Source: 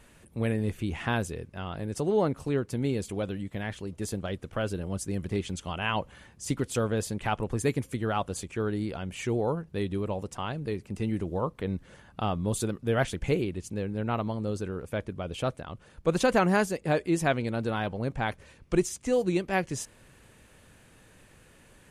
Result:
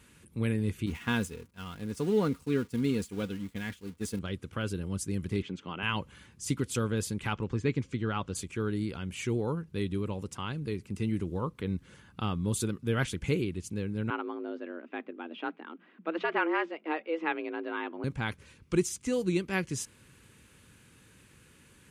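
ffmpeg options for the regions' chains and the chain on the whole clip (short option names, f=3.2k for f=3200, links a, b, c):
-filter_complex "[0:a]asettb=1/sr,asplit=3[a][b][c];[a]atrim=end=0.864[d];[b]atrim=start=0.86:end=4.19,asetpts=PTS-STARTPTS,afade=t=in:d=0.004:c=qsin,afade=t=out:st=3.326:d=0.004:c=qsin,aeval=exprs='val(0)+0.5*0.0112*sgn(val(0))':c=same,agate=range=-33dB:threshold=-29dB:ratio=3:release=100:detection=peak,aecho=1:1:4.2:0.39,atrim=end_sample=146853[e];[c]atrim=start=4.186[f];[d][e]acrossfade=d=0.004:c1=hsin:c2=qsin[g];[g][f]acrossfade=d=0.004:c1=qsin:c2=hsin,asettb=1/sr,asplit=3[h][i][j];[h]atrim=end=5.424[k];[i]atrim=start=5.42:end=5.83,asetpts=PTS-STARTPTS,afade=t=in:d=0.004:c=qsin,afade=t=out:st=0.406:d=0.004:c=qsin,highpass=280,lowpass=2.6k,lowshelf=f=410:g=7.5[l];[j]atrim=start=5.826[m];[k][l]acrossfade=d=0.004:c1=hsin:c2=qsin[n];[n][m]acrossfade=d=0.004:c1=qsin:c2=hsin,asettb=1/sr,asplit=3[o][p][q];[o]atrim=end=7.334[r];[p]atrim=start=7.33:end=8.35,asetpts=PTS-STARTPTS,afade=t=in:d=0.004:c=qsin,afade=t=out:st=1.016:d=0.004:c=qsin,lowpass=f=6.5k:w=0.5412,lowpass=f=6.5k:w=1.3066,acrossover=split=3600[s][t];[t]acompressor=threshold=-54dB:ratio=4:attack=1:release=60[u];[s][u]amix=inputs=2:normalize=0[v];[q]atrim=start=8.346[w];[r][v]acrossfade=d=0.004:c1=hsin:c2=qsin[x];[x][w]acrossfade=d=0.004:c1=qsin:c2=hsin,asettb=1/sr,asplit=3[y][z][aa];[y]atrim=end=14.104[ab];[z]atrim=start=14.1:end=18.04,asetpts=PTS-STARTPTS,afade=t=in:d=0.004:c=qsin,afade=t=out:st=3.936:d=0.004:c=qsin,lowpass=f=2.6k:w=0.5412,lowpass=f=2.6k:w=1.3066,lowshelf=f=170:g=-6.5,afreqshift=160[ac];[aa]atrim=start=18.036[ad];[ab][ac]acrossfade=d=0.004:c1=hsin:c2=qsin[ae];[ae][ad]acrossfade=d=0.004:c1=qsin:c2=hsin,highpass=63,equalizer=f=670:t=o:w=0.73:g=-13.5,bandreject=f=1.8k:w=16"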